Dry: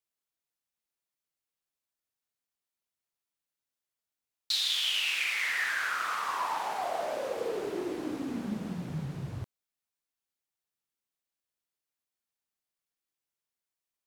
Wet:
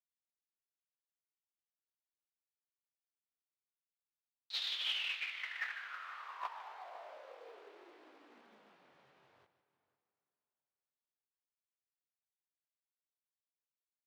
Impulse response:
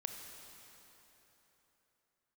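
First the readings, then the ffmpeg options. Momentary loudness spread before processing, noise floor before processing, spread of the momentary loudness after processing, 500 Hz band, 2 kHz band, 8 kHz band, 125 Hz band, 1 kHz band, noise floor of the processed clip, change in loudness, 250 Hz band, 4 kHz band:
10 LU, below −85 dBFS, 20 LU, −21.0 dB, −11.5 dB, −21.0 dB, below −40 dB, −14.5 dB, below −85 dBFS, −9.0 dB, −32.0 dB, −9.0 dB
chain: -filter_complex "[0:a]flanger=delay=17:depth=6.2:speed=0.6,agate=range=-30dB:threshold=-29dB:ratio=16:detection=peak,asplit=2[link_01][link_02];[link_02]adelay=501.5,volume=-18dB,highshelf=frequency=4000:gain=-11.3[link_03];[link_01][link_03]amix=inputs=2:normalize=0,asplit=2[link_04][link_05];[1:a]atrim=start_sample=2205,lowpass=8100,adelay=149[link_06];[link_05][link_06]afir=irnorm=-1:irlink=0,volume=-11.5dB[link_07];[link_04][link_07]amix=inputs=2:normalize=0,asplit=2[link_08][link_09];[link_09]highpass=frequency=720:poles=1,volume=10dB,asoftclip=type=tanh:threshold=-40dB[link_10];[link_08][link_10]amix=inputs=2:normalize=0,lowpass=frequency=7500:poles=1,volume=-6dB,acrusher=bits=4:mode=log:mix=0:aa=0.000001,acrossover=split=370 4400:gain=0.0891 1 0.126[link_11][link_12][link_13];[link_11][link_12][link_13]amix=inputs=3:normalize=0,volume=11.5dB"

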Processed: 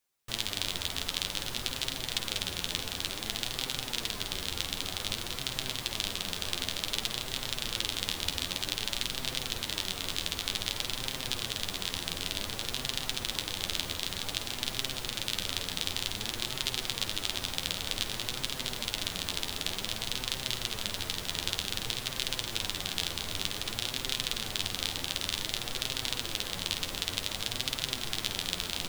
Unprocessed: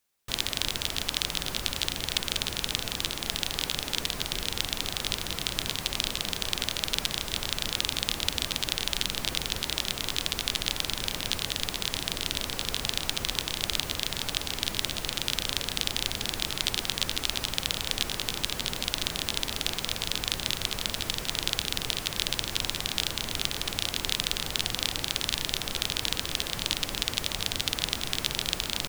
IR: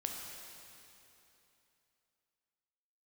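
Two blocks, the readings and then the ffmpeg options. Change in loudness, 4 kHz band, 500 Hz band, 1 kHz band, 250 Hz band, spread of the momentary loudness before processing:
−3.5 dB, −3.5 dB, −3.5 dB, −3.5 dB, −3.5 dB, 2 LU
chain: -filter_complex "[0:a]flanger=delay=7.6:depth=3.9:regen=35:speed=0.54:shape=sinusoidal,asplit=2[link_01][link_02];[1:a]atrim=start_sample=2205,asetrate=66150,aresample=44100,adelay=51[link_03];[link_02][link_03]afir=irnorm=-1:irlink=0,volume=-8.5dB[link_04];[link_01][link_04]amix=inputs=2:normalize=0"

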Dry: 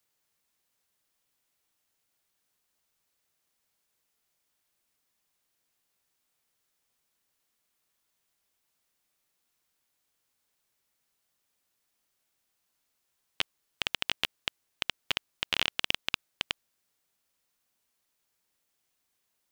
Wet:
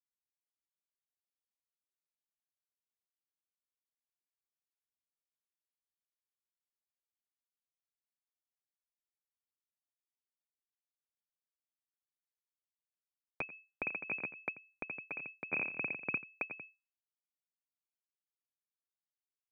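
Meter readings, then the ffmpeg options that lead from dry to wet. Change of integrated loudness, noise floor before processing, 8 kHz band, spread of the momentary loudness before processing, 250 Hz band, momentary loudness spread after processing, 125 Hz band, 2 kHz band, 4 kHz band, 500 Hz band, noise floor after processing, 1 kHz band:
−7.0 dB, −79 dBFS, below −30 dB, 7 LU, −0.5 dB, 8 LU, −4.5 dB, −3.0 dB, below −40 dB, −2.0 dB, below −85 dBFS, −8.0 dB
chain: -af "aeval=exprs='0.596*(cos(1*acos(clip(val(0)/0.596,-1,1)))-cos(1*PI/2))+0.0596*(cos(2*acos(clip(val(0)/0.596,-1,1)))-cos(2*PI/2))':channel_layout=same,acrusher=bits=5:dc=4:mix=0:aa=0.000001,alimiter=limit=-13dB:level=0:latency=1,asubboost=boost=11.5:cutoff=200,aecho=1:1:87:0.266,lowpass=frequency=2200:width_type=q:width=0.5098,lowpass=frequency=2200:width_type=q:width=0.6013,lowpass=frequency=2200:width_type=q:width=0.9,lowpass=frequency=2200:width_type=q:width=2.563,afreqshift=-2600,highpass=frequency=130:width=0.5412,highpass=frequency=130:width=1.3066,acompressor=mode=upward:threshold=-30dB:ratio=2.5,tremolo=f=3.6:d=0.61,equalizer=frequency=1600:width=0.39:gain=-11.5,volume=7dB"

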